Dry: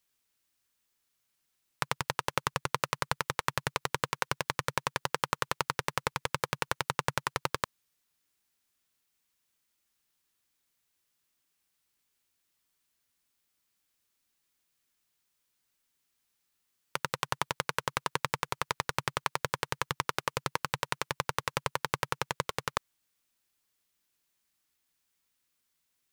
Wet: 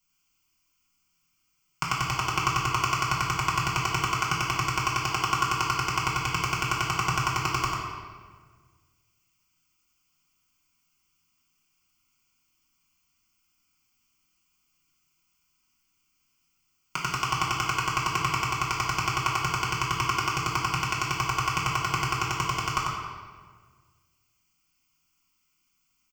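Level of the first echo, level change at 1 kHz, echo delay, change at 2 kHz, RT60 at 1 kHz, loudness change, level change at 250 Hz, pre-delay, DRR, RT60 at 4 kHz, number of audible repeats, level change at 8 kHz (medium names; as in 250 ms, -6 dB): -3.5 dB, +7.5 dB, 95 ms, +5.5 dB, 1.5 s, +6.5 dB, +8.0 dB, 3 ms, -6.5 dB, 1.1 s, 1, +6.5 dB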